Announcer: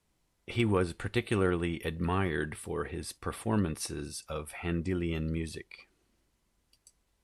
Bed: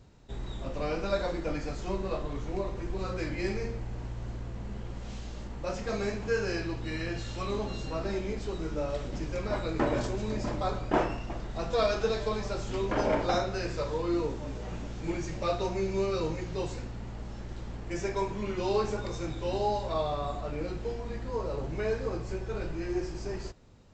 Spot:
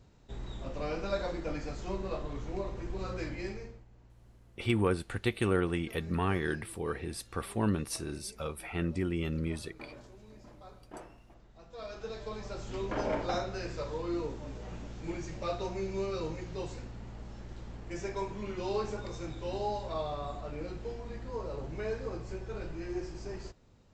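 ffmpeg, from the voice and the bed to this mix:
ffmpeg -i stem1.wav -i stem2.wav -filter_complex "[0:a]adelay=4100,volume=-0.5dB[link_01];[1:a]volume=12.5dB,afade=type=out:start_time=3.22:duration=0.63:silence=0.133352,afade=type=in:start_time=11.71:duration=1.1:silence=0.158489[link_02];[link_01][link_02]amix=inputs=2:normalize=0" out.wav

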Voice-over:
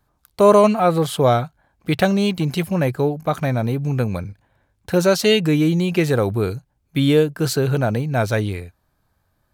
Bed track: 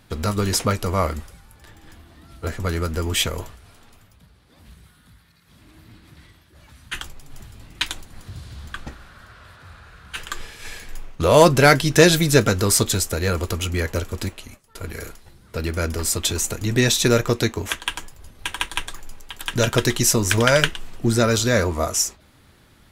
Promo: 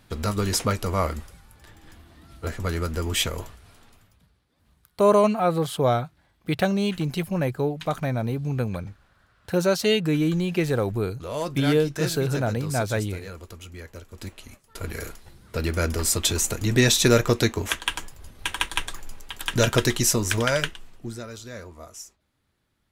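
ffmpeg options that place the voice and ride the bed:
ffmpeg -i stem1.wav -i stem2.wav -filter_complex "[0:a]adelay=4600,volume=-5.5dB[link_01];[1:a]volume=13.5dB,afade=type=out:start_time=3.81:duration=0.7:silence=0.199526,afade=type=in:start_time=14.1:duration=0.65:silence=0.149624,afade=type=out:start_time=19.56:duration=1.68:silence=0.105925[link_02];[link_01][link_02]amix=inputs=2:normalize=0" out.wav

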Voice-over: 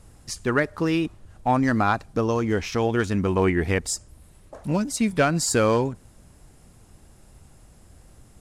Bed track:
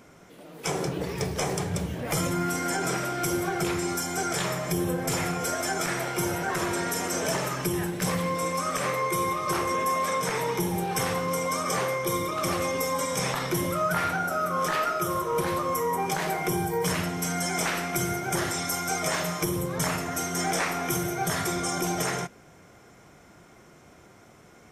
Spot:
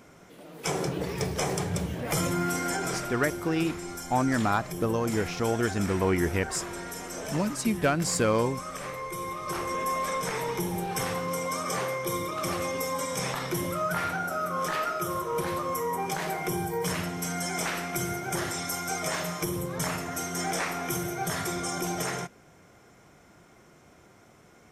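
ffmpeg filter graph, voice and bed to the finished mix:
ffmpeg -i stem1.wav -i stem2.wav -filter_complex "[0:a]adelay=2650,volume=-4.5dB[link_01];[1:a]volume=5.5dB,afade=type=out:start_time=2.56:duration=0.8:silence=0.375837,afade=type=in:start_time=9.15:duration=0.76:silence=0.501187[link_02];[link_01][link_02]amix=inputs=2:normalize=0" out.wav

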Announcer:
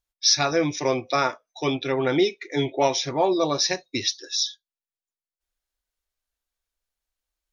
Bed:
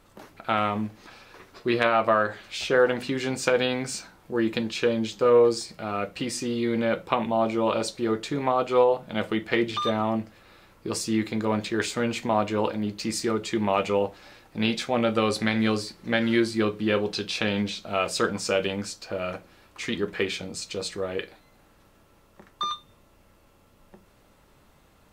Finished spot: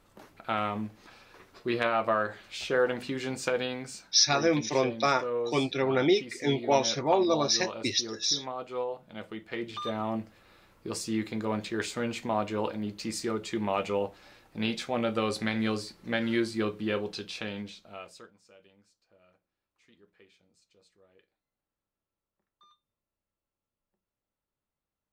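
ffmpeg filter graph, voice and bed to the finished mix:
ffmpeg -i stem1.wav -i stem2.wav -filter_complex "[0:a]adelay=3900,volume=-3dB[link_01];[1:a]volume=2.5dB,afade=type=out:start_time=3.35:duration=0.88:silence=0.398107,afade=type=in:start_time=9.47:duration=0.69:silence=0.398107,afade=type=out:start_time=16.77:duration=1.54:silence=0.0421697[link_02];[link_01][link_02]amix=inputs=2:normalize=0" out.wav

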